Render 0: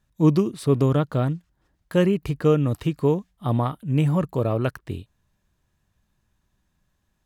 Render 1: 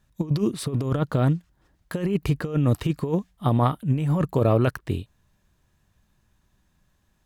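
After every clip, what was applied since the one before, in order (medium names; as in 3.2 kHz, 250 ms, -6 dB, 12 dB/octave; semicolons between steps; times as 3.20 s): compressor with a negative ratio -22 dBFS, ratio -0.5; trim +1.5 dB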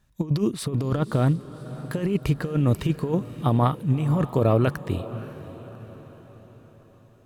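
echo that smears into a reverb 573 ms, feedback 50%, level -14.5 dB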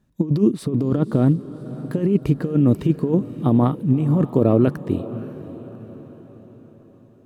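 peaking EQ 270 Hz +15 dB 2.2 oct; trim -6 dB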